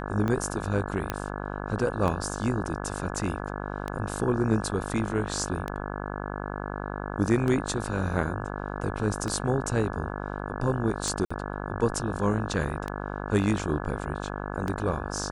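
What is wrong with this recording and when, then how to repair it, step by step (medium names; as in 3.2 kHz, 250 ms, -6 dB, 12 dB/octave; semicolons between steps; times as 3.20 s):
buzz 50 Hz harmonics 34 -34 dBFS
tick 33 1/3 rpm -17 dBFS
1.10 s: pop -12 dBFS
11.25–11.30 s: dropout 55 ms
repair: de-click; de-hum 50 Hz, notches 34; interpolate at 11.25 s, 55 ms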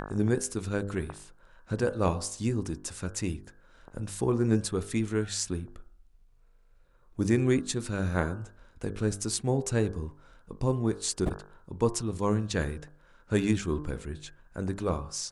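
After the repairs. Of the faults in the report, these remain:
nothing left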